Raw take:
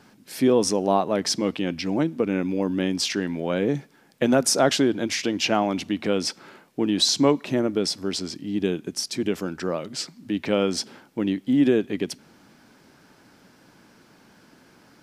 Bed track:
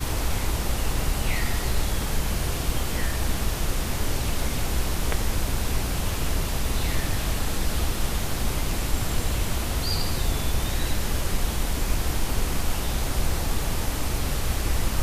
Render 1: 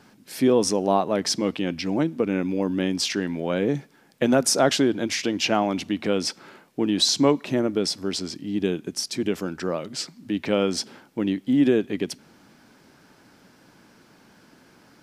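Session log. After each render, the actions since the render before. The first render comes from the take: no audible change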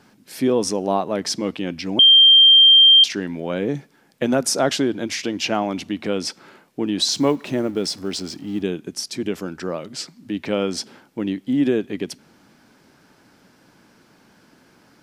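1.99–3.04 s: bleep 3.17 kHz -7 dBFS; 7.11–8.62 s: companding laws mixed up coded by mu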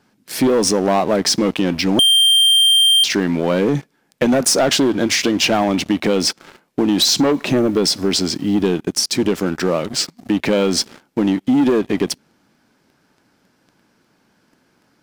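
waveshaping leveller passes 3; compression, threshold -12 dBFS, peak gain reduction 5 dB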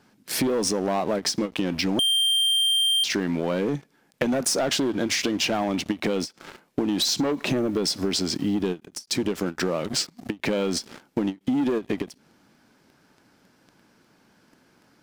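compression 6:1, threshold -22 dBFS, peak gain reduction 10 dB; endings held to a fixed fall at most 360 dB/s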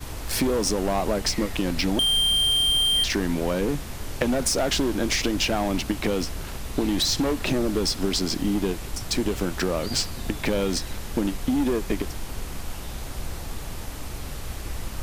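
add bed track -8 dB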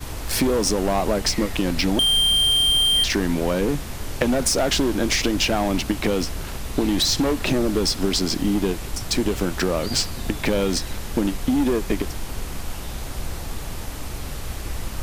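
trim +3 dB

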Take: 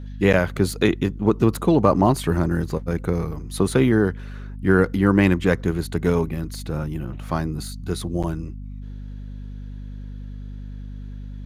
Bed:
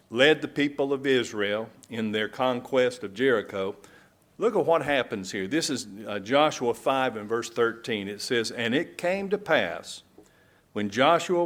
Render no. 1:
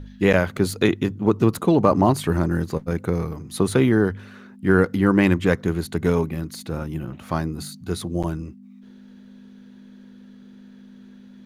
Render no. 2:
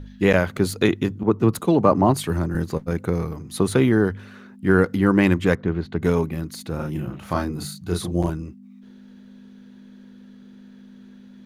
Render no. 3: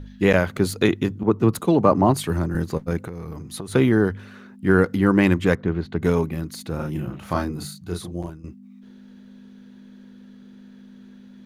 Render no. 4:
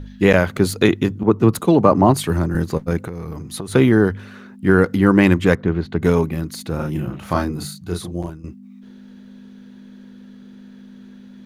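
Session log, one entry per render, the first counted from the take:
de-hum 50 Hz, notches 3
1.23–2.55 s: three bands expanded up and down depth 70%; 5.55–6.02 s: distance through air 250 m; 6.76–8.30 s: doubling 34 ms -3 dB
2.98–3.74 s: compression 10:1, threshold -28 dBFS; 7.41–8.44 s: fade out linear, to -14 dB
trim +4 dB; peak limiter -1 dBFS, peak gain reduction 1.5 dB

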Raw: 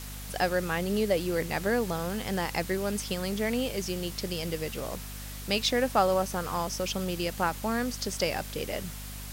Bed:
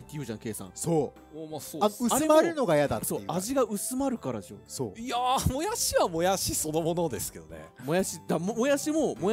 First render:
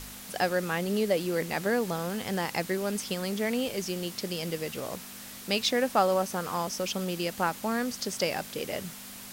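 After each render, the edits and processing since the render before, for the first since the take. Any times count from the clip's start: de-hum 50 Hz, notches 3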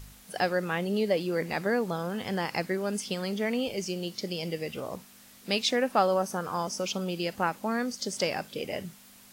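noise print and reduce 10 dB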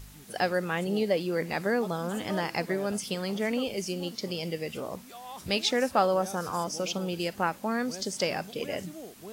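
add bed -17 dB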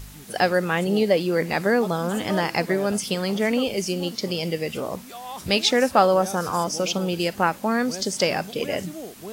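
trim +7 dB

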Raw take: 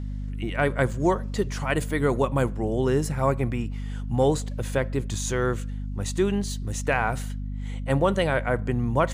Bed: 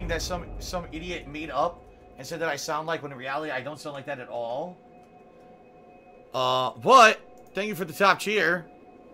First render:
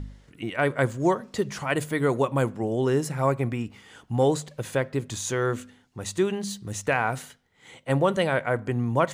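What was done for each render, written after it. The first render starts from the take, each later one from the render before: de-hum 50 Hz, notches 5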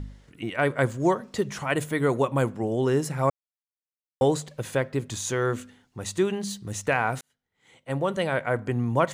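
1.41–2.39 s: band-stop 4.7 kHz; 3.30–4.21 s: mute; 7.21–8.58 s: fade in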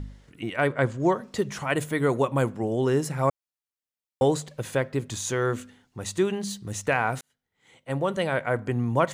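0.67–1.15 s: distance through air 71 m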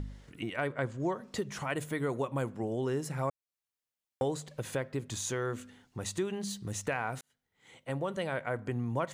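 compression 2:1, threshold -37 dBFS, peak gain reduction 11 dB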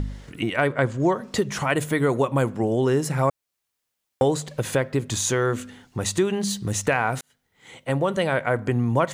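trim +11.5 dB

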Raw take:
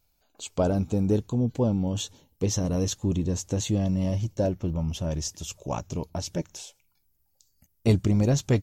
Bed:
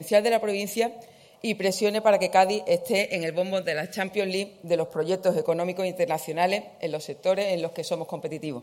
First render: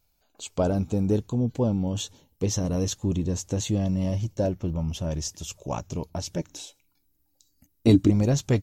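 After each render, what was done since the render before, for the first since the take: 6.46–8.10 s: small resonant body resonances 290/3900 Hz, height 17 dB, ringing for 85 ms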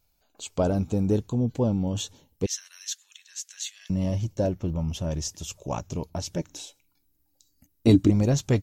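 2.46–3.90 s: Chebyshev high-pass 1.6 kHz, order 4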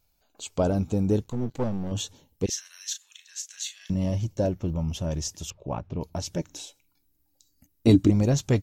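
1.24–1.92 s: partial rectifier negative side -12 dB; 2.45–3.95 s: doubling 35 ms -8 dB; 5.50–6.01 s: distance through air 390 m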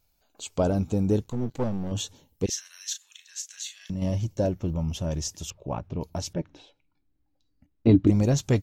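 3.50–4.02 s: compression 1.5:1, threshold -35 dBFS; 6.33–8.07 s: distance through air 360 m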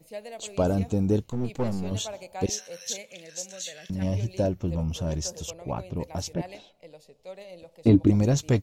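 add bed -18.5 dB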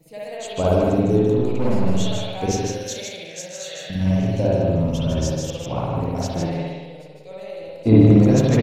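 delay 155 ms -4 dB; spring tank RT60 1.1 s, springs 54 ms, chirp 20 ms, DRR -6 dB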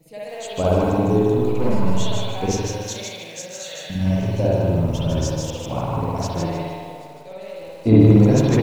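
feedback echo behind a band-pass 154 ms, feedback 63%, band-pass 670 Hz, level -5.5 dB; bit-crushed delay 153 ms, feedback 35%, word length 7-bit, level -11 dB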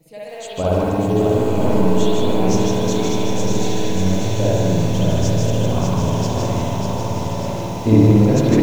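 on a send: echo that smears into a reverb 1009 ms, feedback 54%, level -4.5 dB; on the sum: bit-crushed delay 594 ms, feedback 55%, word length 7-bit, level -4.5 dB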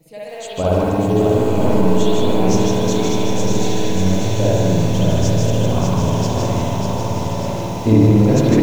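trim +1.5 dB; peak limiter -3 dBFS, peak gain reduction 2.5 dB

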